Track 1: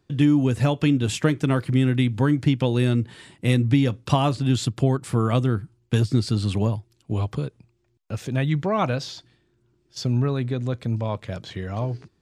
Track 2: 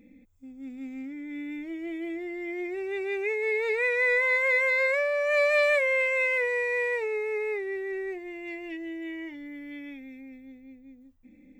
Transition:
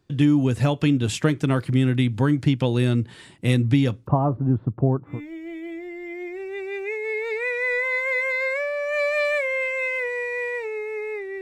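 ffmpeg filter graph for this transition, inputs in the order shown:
-filter_complex "[0:a]asettb=1/sr,asplit=3[a][b][c];[a]atrim=end=4.074[d];[b]atrim=start=4.07:end=5.21,asetpts=PTS-STARTPTS,afade=t=in:d=0.004:c=qsin,afade=t=out:st=1.136:d=0.004:c=qsin,lowpass=f=1.1k:w=0.5412,lowpass=f=1.1k:w=1.3066[e];[c]atrim=start=5.206[f];[d][e]acrossfade=d=0.004:c1=hsin:c2=qsin[g];[g][f]acrossfade=d=0.004:c1=qsin:c2=hsin,apad=whole_dur=11.41,atrim=end=11.41,atrim=end=5.21,asetpts=PTS-STARTPTS[h];[1:a]atrim=start=1.43:end=7.79,asetpts=PTS-STARTPTS[i];[h][i]acrossfade=d=0.16:c1=tri:c2=tri"

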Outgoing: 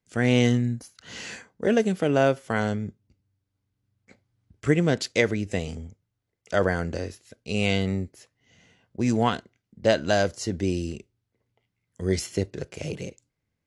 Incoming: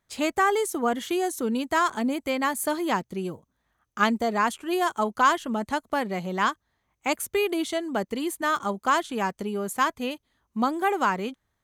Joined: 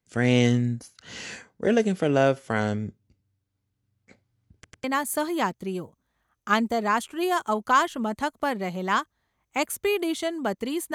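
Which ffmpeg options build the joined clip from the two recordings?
-filter_complex "[0:a]apad=whole_dur=10.94,atrim=end=10.94,asplit=3[a][b][c];[a]atrim=end=4.642[d];[b]atrim=start=4.538:end=4.642[e];[c]atrim=start=4.538:end=4.642[f];[1:a]atrim=start=2.338:end=8.44[g];[d][e]acrossfade=d=0.004:c1=hsin:c2=hsin[h];[h][f]acrossfade=d=0.004:c1=hsin:c2=hsin[i];[i][g]acrossfade=d=0.004:c1=hsin:c2=hsin"

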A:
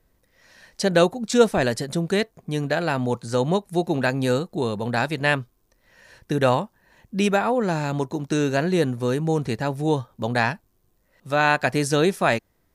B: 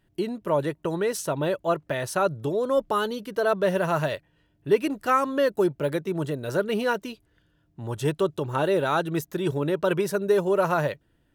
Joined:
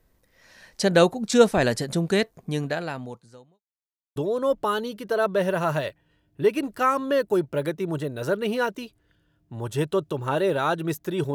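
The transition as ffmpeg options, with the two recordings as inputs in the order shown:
-filter_complex "[0:a]apad=whole_dur=11.34,atrim=end=11.34,asplit=2[a][b];[a]atrim=end=3.63,asetpts=PTS-STARTPTS,afade=t=out:st=2.47:d=1.16:c=qua[c];[b]atrim=start=3.63:end=4.16,asetpts=PTS-STARTPTS,volume=0[d];[1:a]atrim=start=2.43:end=9.61,asetpts=PTS-STARTPTS,afade=t=in:d=0.004:c=hsin[e];[c][d][e]concat=n=3:v=0:a=1"

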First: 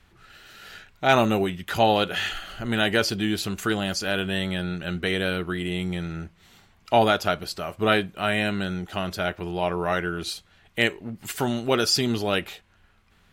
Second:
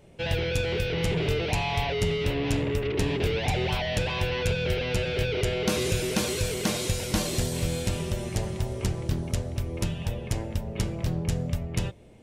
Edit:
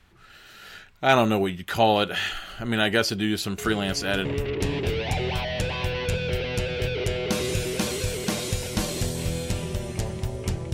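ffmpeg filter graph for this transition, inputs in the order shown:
-filter_complex "[1:a]asplit=2[a][b];[0:a]apad=whole_dur=10.73,atrim=end=10.73,atrim=end=4.252[c];[b]atrim=start=2.618:end=9.1[d];[a]atrim=start=1.95:end=2.62,asetpts=PTS-STARTPTS,volume=-9dB,afade=t=in:d=0.004:c=hsin,afade=t=out:st=0.666:d=0.004:c=hsin,adelay=3580[e];[c][d]acrossfade=d=0.004:c1=hsin:c2=hsin[f];[f][e]amix=inputs=2:normalize=0"

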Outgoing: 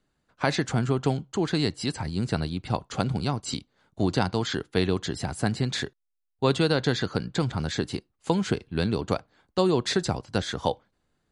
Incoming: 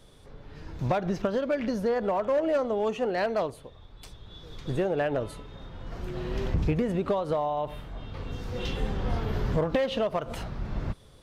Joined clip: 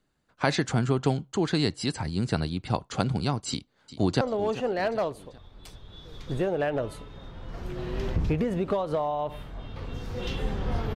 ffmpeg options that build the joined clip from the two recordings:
-filter_complex "[0:a]apad=whole_dur=10.95,atrim=end=10.95,atrim=end=4.212[a];[1:a]atrim=start=2.588:end=9.33[b];[a][b]acrossfade=d=0.004:c1=hsin:c2=hsin,asplit=2[c][d];[d]afade=t=in:st=3.49:d=0.01,afade=t=out:st=4.21:d=0.01,aecho=0:1:390|780|1170|1560:0.188365|0.0847642|0.0381439|0.0171648[e];[c][e]amix=inputs=2:normalize=0"

